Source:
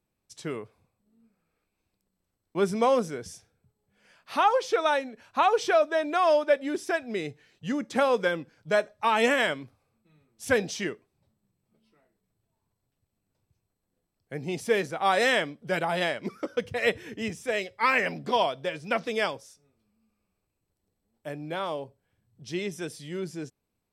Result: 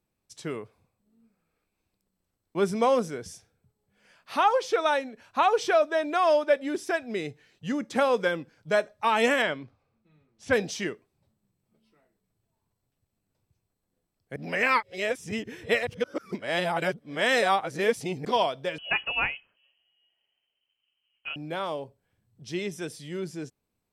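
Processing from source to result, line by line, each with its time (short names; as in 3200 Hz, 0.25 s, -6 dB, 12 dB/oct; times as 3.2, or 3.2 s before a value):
9.42–10.53 air absorption 110 m
14.36–18.25 reverse
18.78–21.36 inverted band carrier 3100 Hz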